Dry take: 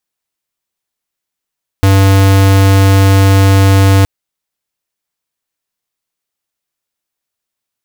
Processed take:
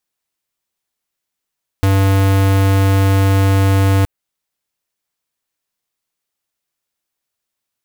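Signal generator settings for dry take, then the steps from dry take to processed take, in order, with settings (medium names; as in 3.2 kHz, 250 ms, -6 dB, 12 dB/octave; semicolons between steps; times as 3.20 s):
tone square 97.3 Hz -6.5 dBFS 2.22 s
dynamic bell 5.2 kHz, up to -5 dB, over -34 dBFS, Q 0.92; peak limiter -11.5 dBFS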